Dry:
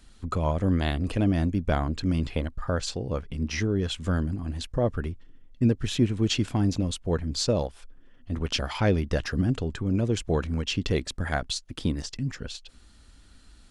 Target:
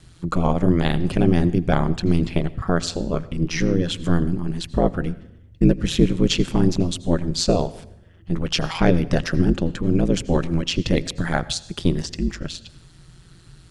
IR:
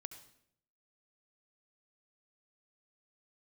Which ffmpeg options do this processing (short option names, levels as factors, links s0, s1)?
-filter_complex "[0:a]highpass=f=61:p=1,lowshelf=f=120:g=7,aeval=exprs='val(0)*sin(2*PI*86*n/s)':c=same,asplit=2[s0][s1];[1:a]atrim=start_sample=2205,asetrate=37485,aresample=44100[s2];[s1][s2]afir=irnorm=-1:irlink=0,volume=0.794[s3];[s0][s3]amix=inputs=2:normalize=0,volume=1.68"